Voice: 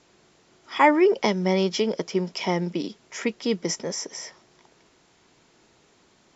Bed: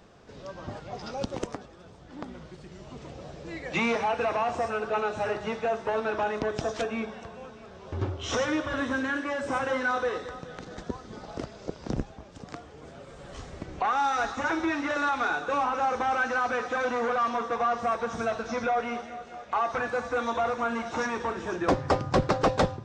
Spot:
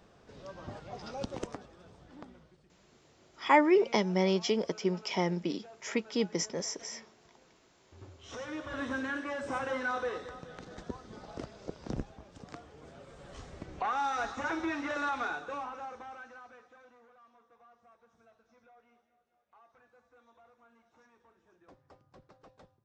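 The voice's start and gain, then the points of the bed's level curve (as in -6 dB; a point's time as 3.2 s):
2.70 s, -5.5 dB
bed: 2.02 s -5.5 dB
2.9 s -25 dB
7.84 s -25 dB
8.86 s -6 dB
15.18 s -6 dB
17.12 s -35 dB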